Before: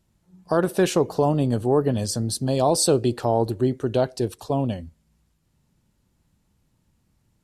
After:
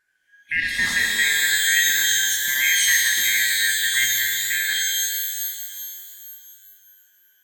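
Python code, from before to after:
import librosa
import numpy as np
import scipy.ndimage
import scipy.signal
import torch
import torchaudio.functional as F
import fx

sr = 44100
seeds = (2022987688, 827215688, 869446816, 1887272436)

y = fx.band_shuffle(x, sr, order='2143')
y = fx.rev_shimmer(y, sr, seeds[0], rt60_s=2.4, semitones=12, shimmer_db=-2, drr_db=-0.5)
y = y * 10.0 ** (-4.5 / 20.0)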